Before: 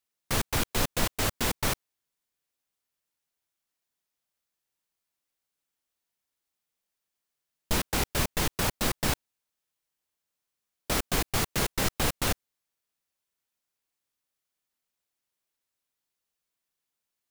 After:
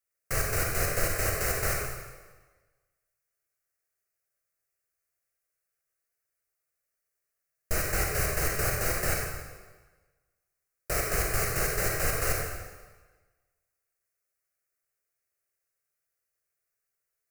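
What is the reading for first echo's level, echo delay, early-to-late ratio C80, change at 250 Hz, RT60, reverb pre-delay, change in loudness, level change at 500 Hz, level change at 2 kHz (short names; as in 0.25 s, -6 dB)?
none, none, 3.0 dB, -6.5 dB, 1.3 s, 33 ms, 0.0 dB, +2.0 dB, +2.0 dB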